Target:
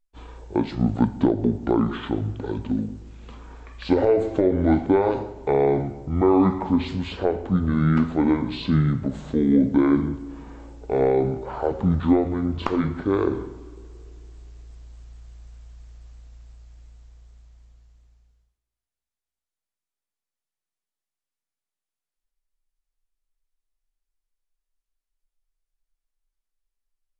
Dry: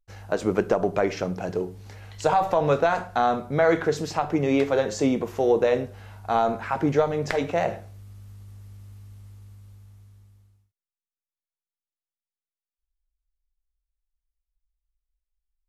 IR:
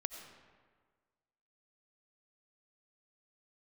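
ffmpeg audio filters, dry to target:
-filter_complex "[0:a]asplit=2[link_01][link_02];[1:a]atrim=start_sample=2205,lowpass=4400[link_03];[link_02][link_03]afir=irnorm=-1:irlink=0,volume=-11dB[link_04];[link_01][link_04]amix=inputs=2:normalize=0,asetrate=25442,aresample=44100"

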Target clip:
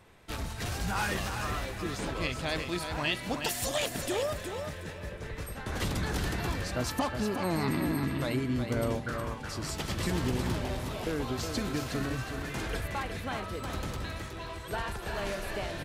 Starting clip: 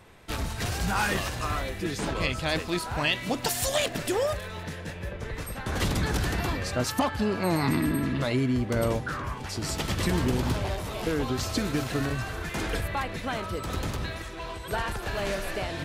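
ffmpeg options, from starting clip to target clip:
ffmpeg -i in.wav -af "aecho=1:1:366|732|1098:0.447|0.116|0.0302,volume=-5dB" out.wav

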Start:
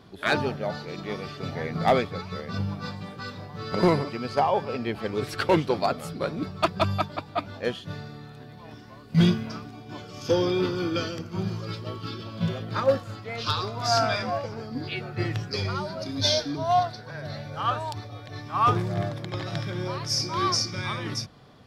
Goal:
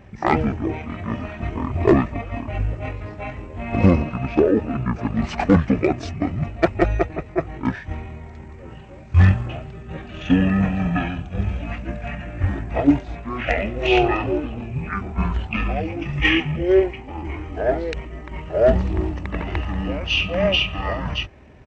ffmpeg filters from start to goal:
ffmpeg -i in.wav -af "asetrate=23361,aresample=44100,atempo=1.88775,volume=6.5dB" out.wav

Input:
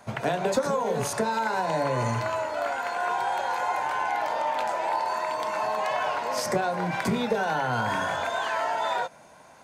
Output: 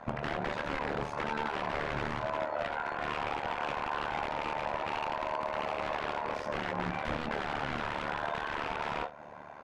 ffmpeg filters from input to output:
ffmpeg -i in.wav -af "aeval=exprs='(mod(11.9*val(0)+1,2)-1)/11.9':channel_layout=same,acompressor=threshold=-35dB:ratio=6,lowpass=2100,aecho=1:1:22|72:0.473|0.133,tremolo=f=74:d=0.889,volume=7dB" out.wav

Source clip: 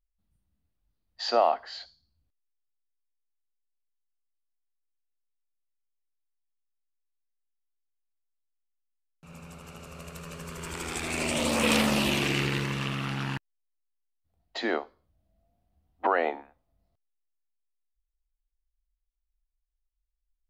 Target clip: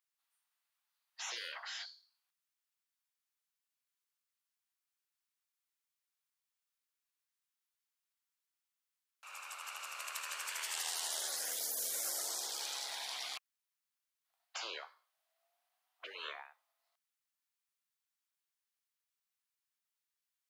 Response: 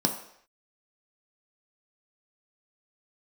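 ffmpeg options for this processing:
-af "highpass=frequency=960:width=0.5412,highpass=frequency=960:width=1.3066,afftfilt=real='re*lt(hypot(re,im),0.0158)':imag='im*lt(hypot(re,im),0.0158)':win_size=1024:overlap=0.75,volume=5.5dB"

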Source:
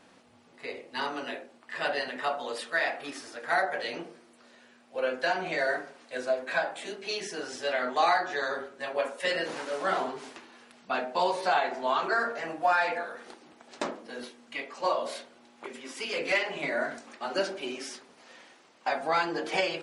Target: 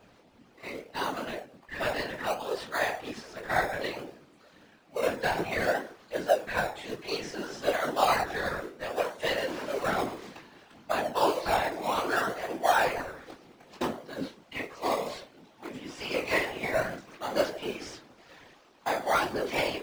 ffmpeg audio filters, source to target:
ffmpeg -i in.wav -filter_complex "[0:a]aphaser=in_gain=1:out_gain=1:delay=4.2:decay=0.4:speed=1.3:type=triangular,lowpass=6300,asplit=2[link_01][link_02];[link_02]acrusher=samples=23:mix=1:aa=0.000001:lfo=1:lforange=13.8:lforate=0.62,volume=-5.5dB[link_03];[link_01][link_03]amix=inputs=2:normalize=0,flanger=delay=19:depth=3.3:speed=2.9,afftfilt=real='hypot(re,im)*cos(2*PI*random(0))':imag='hypot(re,im)*sin(2*PI*random(1))':win_size=512:overlap=0.75,volume=6.5dB" out.wav

